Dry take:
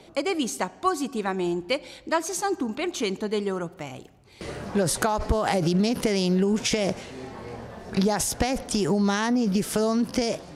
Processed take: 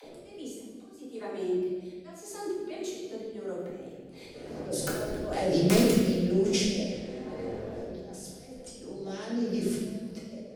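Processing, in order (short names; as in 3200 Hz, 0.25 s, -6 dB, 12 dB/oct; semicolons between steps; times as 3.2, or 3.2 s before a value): Doppler pass-by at 4.8, 13 m/s, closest 13 m; dynamic EQ 1500 Hz, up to -4 dB, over -45 dBFS, Q 0.8; harmonic-percussive split harmonic -6 dB; graphic EQ 250/500/1000 Hz +4/+10/-5 dB; upward compressor, threshold -44 dBFS; auto swell 0.763 s; wrapped overs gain 20 dB; dispersion lows, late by 42 ms, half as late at 430 Hz; reverb RT60 1.4 s, pre-delay 4 ms, DRR -7 dB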